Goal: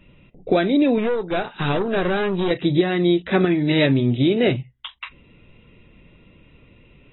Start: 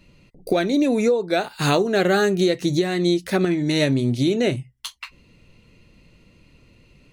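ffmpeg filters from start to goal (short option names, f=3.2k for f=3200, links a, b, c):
-filter_complex "[0:a]asettb=1/sr,asplit=3[a][b][c];[a]atrim=end=0.984[d];[b]atrim=start=0.98:end=2.51,asetpts=PTS-STARTPTS,afade=t=in:d=0.004:c=qsin,afade=t=out:st=1.526:d=0.004:c=qsin,aeval=exprs='(tanh(10*val(0)+0.45)-tanh(0.45))/10':c=same[e];[c]atrim=start=2.506[f];[d][e]acrossfade=d=0.004:c1=hsin:c2=qsin[g];[g][f]acrossfade=d=0.004:c1=qsin:c2=hsin,volume=2dB" -ar 22050 -c:a aac -b:a 16k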